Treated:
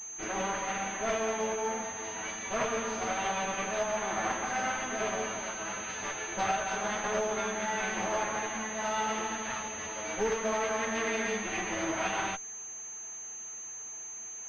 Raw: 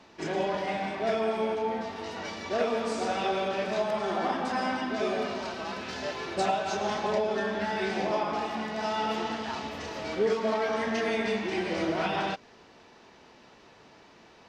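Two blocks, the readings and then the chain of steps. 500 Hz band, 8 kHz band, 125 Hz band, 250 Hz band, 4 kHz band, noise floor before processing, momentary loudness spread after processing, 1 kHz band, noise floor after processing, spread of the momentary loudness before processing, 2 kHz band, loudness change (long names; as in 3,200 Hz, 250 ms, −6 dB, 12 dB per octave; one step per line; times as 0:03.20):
−5.0 dB, +15.0 dB, −5.0 dB, −6.0 dB, −3.0 dB, −55 dBFS, 9 LU, −2.0 dB, −42 dBFS, 7 LU, +1.0 dB, −2.5 dB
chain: lower of the sound and its delayed copy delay 9.2 ms
tilt shelving filter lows −5.5 dB, about 1,100 Hz
switching amplifier with a slow clock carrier 6,300 Hz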